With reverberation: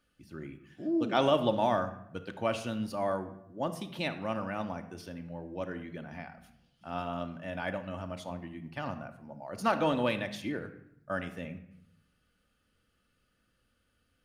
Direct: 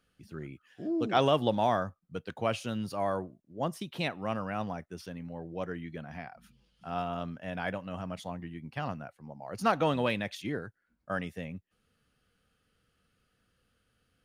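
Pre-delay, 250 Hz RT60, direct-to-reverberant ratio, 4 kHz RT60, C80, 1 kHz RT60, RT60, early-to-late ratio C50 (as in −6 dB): 3 ms, 1.0 s, 6.5 dB, 0.55 s, 14.5 dB, 0.70 s, 0.75 s, 11.5 dB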